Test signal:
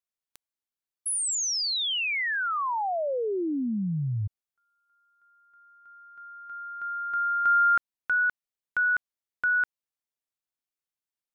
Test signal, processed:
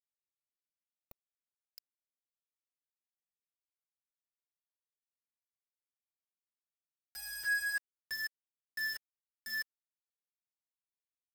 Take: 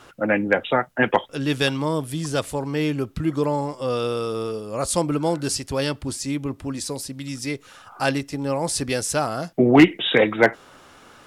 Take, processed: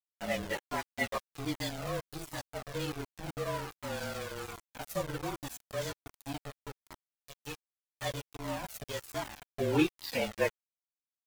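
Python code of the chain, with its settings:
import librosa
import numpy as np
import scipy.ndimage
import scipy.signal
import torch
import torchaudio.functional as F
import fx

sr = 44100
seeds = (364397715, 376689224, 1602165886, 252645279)

y = fx.partial_stretch(x, sr, pct=110)
y = np.where(np.abs(y) >= 10.0 ** (-24.0 / 20.0), y, 0.0)
y = fx.comb_cascade(y, sr, direction='falling', hz=1.3)
y = y * librosa.db_to_amplitude(-6.5)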